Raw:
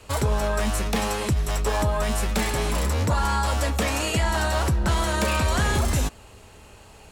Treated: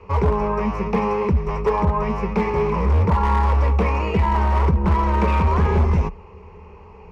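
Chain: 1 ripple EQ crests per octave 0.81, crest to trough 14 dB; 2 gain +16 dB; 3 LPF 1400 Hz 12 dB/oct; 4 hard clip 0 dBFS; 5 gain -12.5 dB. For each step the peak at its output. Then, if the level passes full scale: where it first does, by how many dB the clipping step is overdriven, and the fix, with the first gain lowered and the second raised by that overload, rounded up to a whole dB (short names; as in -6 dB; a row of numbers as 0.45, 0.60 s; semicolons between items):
-8.0, +8.0, +7.5, 0.0, -12.5 dBFS; step 2, 7.5 dB; step 2 +8 dB, step 5 -4.5 dB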